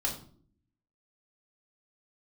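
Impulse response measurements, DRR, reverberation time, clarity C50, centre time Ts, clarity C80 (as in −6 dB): −3.5 dB, non-exponential decay, 9.0 dB, 21 ms, 13.0 dB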